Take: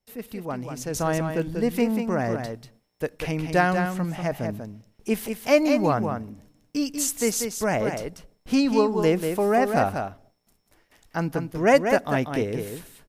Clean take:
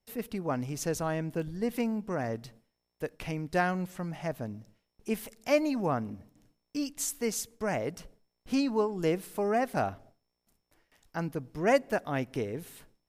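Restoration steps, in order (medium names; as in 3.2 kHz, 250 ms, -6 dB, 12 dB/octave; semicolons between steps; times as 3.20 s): inverse comb 190 ms -6.5 dB; gain correction -7 dB, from 0.94 s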